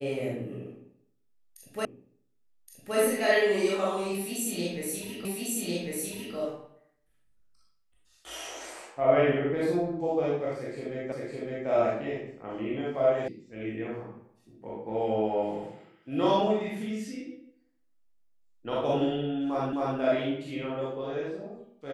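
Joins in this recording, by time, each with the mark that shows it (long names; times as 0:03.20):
0:01.85: the same again, the last 1.12 s
0:05.25: the same again, the last 1.1 s
0:11.12: the same again, the last 0.56 s
0:13.28: cut off before it has died away
0:19.73: the same again, the last 0.26 s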